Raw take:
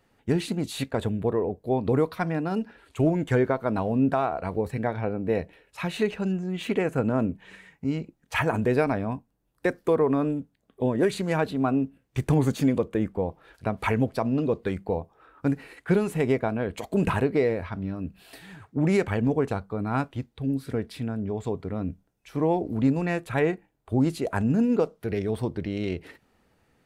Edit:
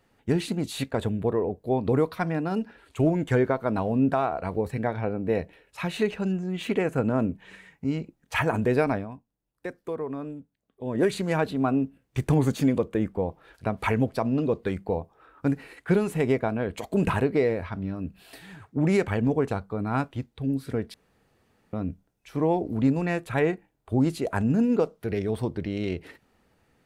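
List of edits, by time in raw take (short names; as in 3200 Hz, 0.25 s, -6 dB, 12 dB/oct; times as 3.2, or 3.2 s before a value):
8.95–10.98 dip -10 dB, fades 0.13 s
20.94–21.73 room tone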